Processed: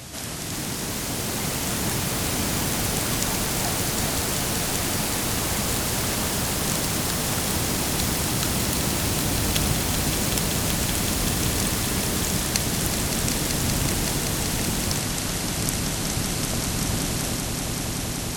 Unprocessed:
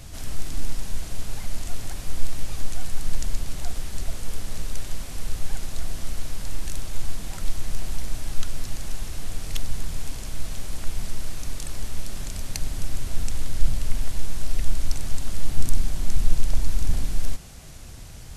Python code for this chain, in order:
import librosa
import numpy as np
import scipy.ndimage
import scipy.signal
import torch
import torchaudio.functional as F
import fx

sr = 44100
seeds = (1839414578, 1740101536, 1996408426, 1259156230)

p1 = x + fx.echo_swell(x, sr, ms=190, loudest=5, wet_db=-8, dry=0)
p2 = fx.echo_pitch(p1, sr, ms=410, semitones=4, count=3, db_per_echo=-3.0)
p3 = scipy.signal.sosfilt(scipy.signal.butter(2, 140.0, 'highpass', fs=sr, output='sos'), p2)
y = p3 * 10.0 ** (8.5 / 20.0)